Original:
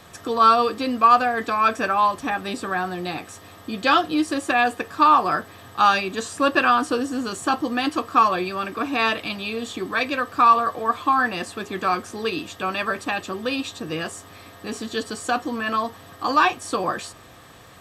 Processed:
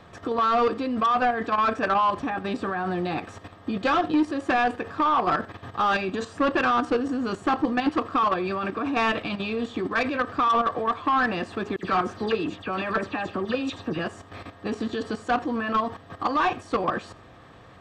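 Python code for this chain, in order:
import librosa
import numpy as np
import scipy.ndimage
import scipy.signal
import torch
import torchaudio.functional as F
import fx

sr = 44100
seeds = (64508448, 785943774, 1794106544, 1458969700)

y = fx.level_steps(x, sr, step_db=11)
y = fx.dispersion(y, sr, late='lows', ms=71.0, hz=2900.0, at=(11.76, 13.99))
y = 10.0 ** (-23.0 / 20.0) * np.tanh(y / 10.0 ** (-23.0 / 20.0))
y = fx.spacing_loss(y, sr, db_at_10k=23)
y = y + 10.0 ** (-22.0 / 20.0) * np.pad(y, (int(86 * sr / 1000.0), 0))[:len(y)]
y = F.gain(torch.from_numpy(y), 8.0).numpy()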